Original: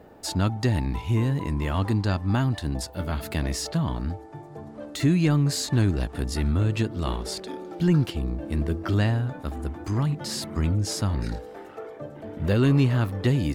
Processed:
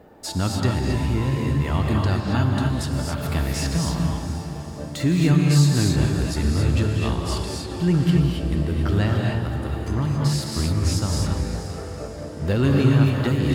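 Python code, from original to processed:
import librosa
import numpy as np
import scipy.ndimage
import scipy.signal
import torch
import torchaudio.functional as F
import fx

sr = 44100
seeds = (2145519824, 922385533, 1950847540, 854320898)

y = fx.echo_diffused(x, sr, ms=469, feedback_pct=52, wet_db=-11)
y = fx.rev_gated(y, sr, seeds[0], gate_ms=300, shape='rising', drr_db=-0.5)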